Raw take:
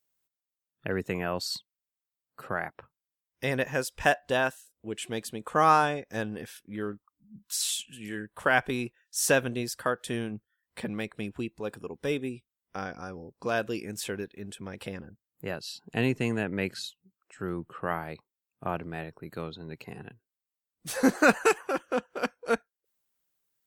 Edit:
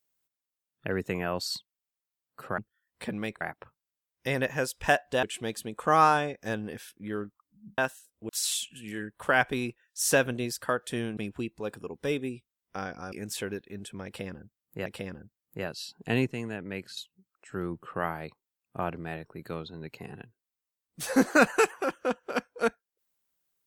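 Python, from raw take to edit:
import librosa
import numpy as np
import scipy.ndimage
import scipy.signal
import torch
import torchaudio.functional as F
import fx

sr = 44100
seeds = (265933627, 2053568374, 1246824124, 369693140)

y = fx.edit(x, sr, fx.move(start_s=4.4, length_s=0.51, to_s=7.46),
    fx.move(start_s=10.34, length_s=0.83, to_s=2.58),
    fx.cut(start_s=13.12, length_s=0.67),
    fx.repeat(start_s=14.73, length_s=0.8, count=2),
    fx.clip_gain(start_s=16.14, length_s=0.7, db=-6.5), tone=tone)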